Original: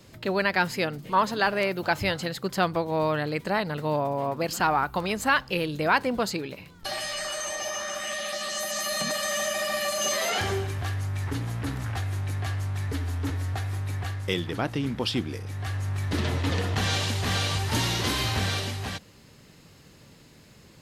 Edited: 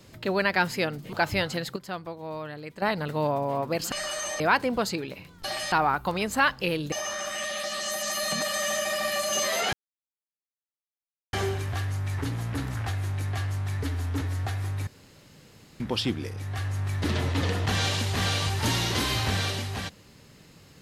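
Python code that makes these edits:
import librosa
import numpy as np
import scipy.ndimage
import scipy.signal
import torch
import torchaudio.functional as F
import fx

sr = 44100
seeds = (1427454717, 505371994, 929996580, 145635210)

y = fx.edit(x, sr, fx.cut(start_s=1.13, length_s=0.69),
    fx.clip_gain(start_s=2.45, length_s=1.06, db=-10.5),
    fx.swap(start_s=4.61, length_s=1.2, other_s=7.13, other_length_s=0.48),
    fx.insert_silence(at_s=10.42, length_s=1.6),
    fx.room_tone_fill(start_s=13.96, length_s=0.93), tone=tone)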